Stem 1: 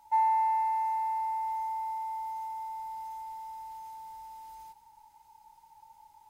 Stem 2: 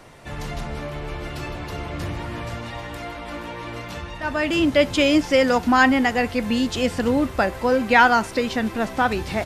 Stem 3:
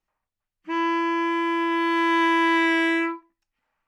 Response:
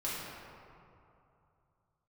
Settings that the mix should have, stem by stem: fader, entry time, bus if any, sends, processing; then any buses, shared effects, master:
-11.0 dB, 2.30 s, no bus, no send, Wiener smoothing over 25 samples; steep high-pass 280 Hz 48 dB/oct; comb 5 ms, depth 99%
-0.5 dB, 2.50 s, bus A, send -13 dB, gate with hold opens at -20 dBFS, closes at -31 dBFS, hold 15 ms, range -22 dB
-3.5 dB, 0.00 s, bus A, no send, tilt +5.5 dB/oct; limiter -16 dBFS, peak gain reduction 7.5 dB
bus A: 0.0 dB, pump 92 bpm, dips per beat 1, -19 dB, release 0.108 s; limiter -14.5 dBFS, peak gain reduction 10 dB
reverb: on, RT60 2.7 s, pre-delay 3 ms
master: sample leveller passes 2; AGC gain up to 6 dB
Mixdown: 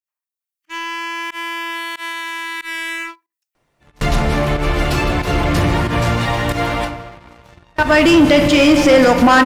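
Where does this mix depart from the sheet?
stem 1: muted; stem 2: entry 2.50 s -> 3.55 s; stem 3 -3.5 dB -> -13.5 dB

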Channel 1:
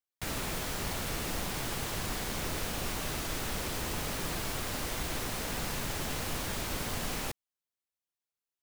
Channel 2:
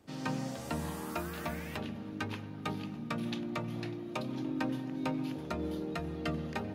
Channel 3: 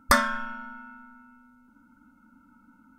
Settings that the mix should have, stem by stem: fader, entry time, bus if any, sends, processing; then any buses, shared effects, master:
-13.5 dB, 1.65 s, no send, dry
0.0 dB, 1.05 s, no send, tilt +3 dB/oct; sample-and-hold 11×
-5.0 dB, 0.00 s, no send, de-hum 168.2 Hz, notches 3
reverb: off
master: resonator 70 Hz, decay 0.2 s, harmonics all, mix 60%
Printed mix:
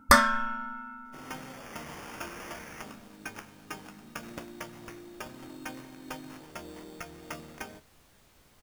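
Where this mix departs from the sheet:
stem 1 -13.5 dB -> -22.5 dB; stem 3 -5.0 dB -> +5.5 dB

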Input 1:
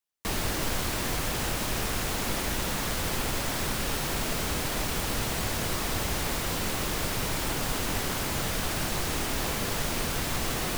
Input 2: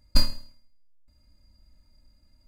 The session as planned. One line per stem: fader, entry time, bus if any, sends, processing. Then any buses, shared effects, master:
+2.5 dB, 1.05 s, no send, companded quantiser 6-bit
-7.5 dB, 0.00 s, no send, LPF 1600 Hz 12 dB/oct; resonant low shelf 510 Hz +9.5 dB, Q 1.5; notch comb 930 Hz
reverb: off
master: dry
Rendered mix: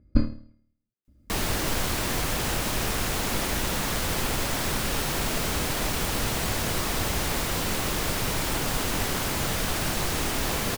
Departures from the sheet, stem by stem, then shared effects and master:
stem 1: missing companded quantiser 6-bit; stem 2 -7.5 dB -> -0.5 dB

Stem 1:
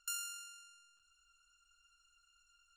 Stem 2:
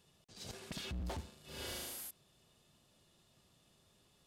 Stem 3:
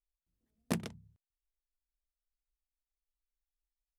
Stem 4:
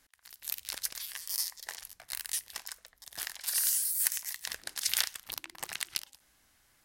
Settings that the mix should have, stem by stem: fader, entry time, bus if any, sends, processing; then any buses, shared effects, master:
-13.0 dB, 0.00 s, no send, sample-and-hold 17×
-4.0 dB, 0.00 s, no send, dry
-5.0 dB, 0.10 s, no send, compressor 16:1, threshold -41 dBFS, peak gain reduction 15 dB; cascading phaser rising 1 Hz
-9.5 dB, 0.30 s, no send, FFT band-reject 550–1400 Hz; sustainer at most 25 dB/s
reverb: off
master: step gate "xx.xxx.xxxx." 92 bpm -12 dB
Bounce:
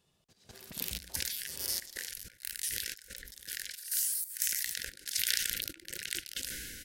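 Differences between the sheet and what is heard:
stem 1: muted; stem 4 -9.5 dB -> -3.0 dB

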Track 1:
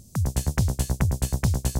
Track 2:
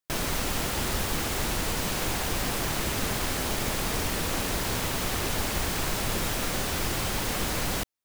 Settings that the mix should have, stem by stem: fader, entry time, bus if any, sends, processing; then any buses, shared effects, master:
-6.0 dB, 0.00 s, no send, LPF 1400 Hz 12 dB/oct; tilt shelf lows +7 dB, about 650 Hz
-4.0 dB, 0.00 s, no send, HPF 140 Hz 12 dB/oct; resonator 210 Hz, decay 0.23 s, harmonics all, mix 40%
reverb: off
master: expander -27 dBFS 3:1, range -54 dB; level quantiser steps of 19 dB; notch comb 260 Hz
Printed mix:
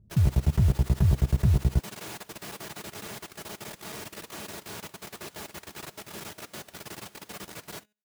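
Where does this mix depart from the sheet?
stem 1 -6.0 dB -> 0.0 dB; master: missing expander -27 dBFS 3:1, range -54 dB

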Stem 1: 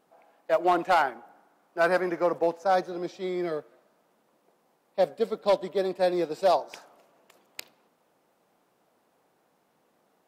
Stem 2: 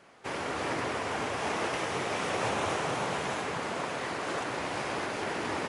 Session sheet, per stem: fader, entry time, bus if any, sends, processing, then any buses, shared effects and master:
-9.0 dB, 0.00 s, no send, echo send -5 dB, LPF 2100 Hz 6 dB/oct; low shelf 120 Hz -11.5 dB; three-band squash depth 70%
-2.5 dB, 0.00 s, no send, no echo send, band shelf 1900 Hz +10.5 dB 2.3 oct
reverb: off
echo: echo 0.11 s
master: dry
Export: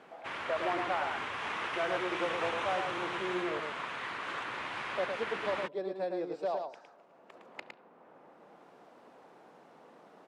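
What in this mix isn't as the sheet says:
stem 2 -2.5 dB -> -12.0 dB; master: extra Bessel low-pass 8900 Hz

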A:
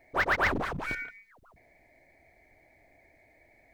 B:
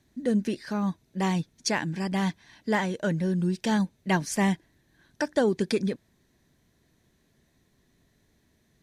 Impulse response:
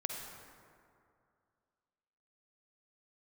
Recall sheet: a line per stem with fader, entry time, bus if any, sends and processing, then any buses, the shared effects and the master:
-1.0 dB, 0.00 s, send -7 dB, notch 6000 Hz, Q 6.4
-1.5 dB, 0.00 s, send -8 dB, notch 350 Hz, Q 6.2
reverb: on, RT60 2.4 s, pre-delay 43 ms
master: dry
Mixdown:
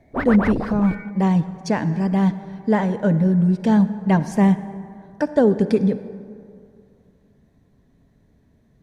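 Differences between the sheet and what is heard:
stem A: send off; master: extra tilt shelf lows +9 dB, about 1400 Hz

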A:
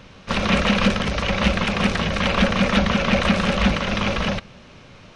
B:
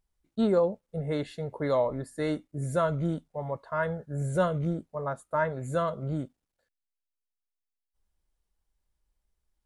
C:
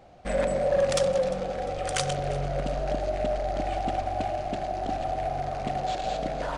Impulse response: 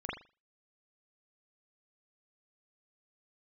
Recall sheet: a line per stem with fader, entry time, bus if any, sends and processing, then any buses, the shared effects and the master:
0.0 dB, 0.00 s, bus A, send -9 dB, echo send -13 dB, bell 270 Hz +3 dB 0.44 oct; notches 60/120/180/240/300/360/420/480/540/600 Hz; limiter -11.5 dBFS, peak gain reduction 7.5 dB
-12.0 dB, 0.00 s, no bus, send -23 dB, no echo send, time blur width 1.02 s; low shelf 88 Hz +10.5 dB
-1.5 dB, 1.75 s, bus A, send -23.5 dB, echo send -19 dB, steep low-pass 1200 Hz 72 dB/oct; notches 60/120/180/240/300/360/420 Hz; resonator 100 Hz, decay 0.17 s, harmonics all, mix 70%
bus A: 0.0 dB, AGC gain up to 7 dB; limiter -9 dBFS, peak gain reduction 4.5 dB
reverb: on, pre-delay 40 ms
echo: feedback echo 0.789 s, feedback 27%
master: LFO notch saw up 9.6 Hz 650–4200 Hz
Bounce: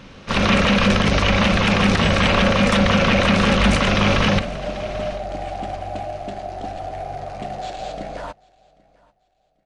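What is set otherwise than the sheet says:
stem B: send off; stem C: missing steep low-pass 1200 Hz 72 dB/oct; master: missing LFO notch saw up 9.6 Hz 650–4200 Hz

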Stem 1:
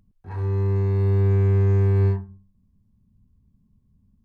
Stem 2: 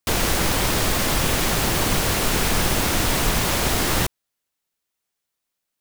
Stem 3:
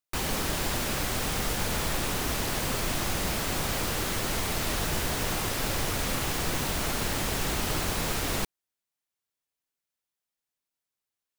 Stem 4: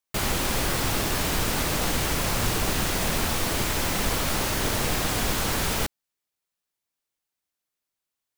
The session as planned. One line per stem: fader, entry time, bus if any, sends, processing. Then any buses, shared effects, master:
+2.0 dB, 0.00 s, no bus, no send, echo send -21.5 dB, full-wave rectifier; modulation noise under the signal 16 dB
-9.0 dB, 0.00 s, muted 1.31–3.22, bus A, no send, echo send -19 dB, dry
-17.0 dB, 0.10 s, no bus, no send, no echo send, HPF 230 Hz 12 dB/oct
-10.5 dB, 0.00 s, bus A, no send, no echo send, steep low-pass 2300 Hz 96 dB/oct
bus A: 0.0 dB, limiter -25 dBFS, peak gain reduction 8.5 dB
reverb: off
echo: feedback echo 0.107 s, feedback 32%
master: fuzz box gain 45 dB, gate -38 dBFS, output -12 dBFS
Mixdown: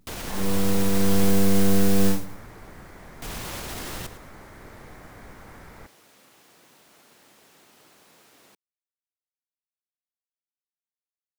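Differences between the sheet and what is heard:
stem 3 -17.0 dB -> -25.0 dB; stem 4 -10.5 dB -> -18.0 dB; master: missing fuzz box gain 45 dB, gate -38 dBFS, output -12 dBFS

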